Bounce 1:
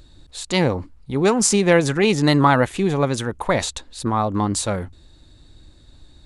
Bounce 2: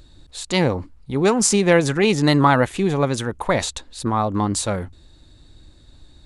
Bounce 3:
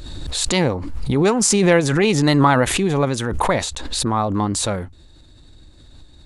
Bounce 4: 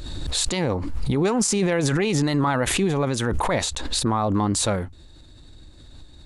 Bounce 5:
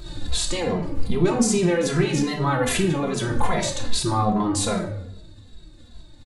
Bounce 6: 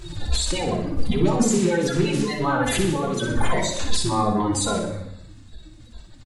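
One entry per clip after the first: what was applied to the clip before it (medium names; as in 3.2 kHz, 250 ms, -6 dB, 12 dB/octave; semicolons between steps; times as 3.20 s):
no audible change
swell ahead of each attack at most 32 dB/s
peak limiter -13 dBFS, peak gain reduction 9.5 dB
simulated room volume 210 m³, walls mixed, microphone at 0.84 m; endless flanger 2.6 ms -2.5 Hz
coarse spectral quantiser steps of 30 dB; on a send: feedback delay 61 ms, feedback 54%, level -8 dB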